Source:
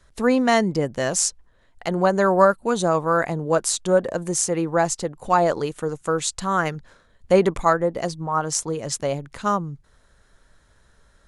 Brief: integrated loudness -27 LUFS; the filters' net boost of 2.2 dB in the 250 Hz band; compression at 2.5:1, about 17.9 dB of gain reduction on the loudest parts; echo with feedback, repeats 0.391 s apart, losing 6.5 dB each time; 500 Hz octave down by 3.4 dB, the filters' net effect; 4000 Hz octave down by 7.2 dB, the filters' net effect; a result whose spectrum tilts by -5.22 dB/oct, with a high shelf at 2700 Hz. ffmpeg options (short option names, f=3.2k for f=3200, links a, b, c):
-af "equalizer=f=250:t=o:g=4.5,equalizer=f=500:t=o:g=-5,highshelf=f=2.7k:g=-6.5,equalizer=f=4k:t=o:g=-3.5,acompressor=threshold=-42dB:ratio=2.5,aecho=1:1:391|782|1173|1564|1955|2346:0.473|0.222|0.105|0.0491|0.0231|0.0109,volume=11dB"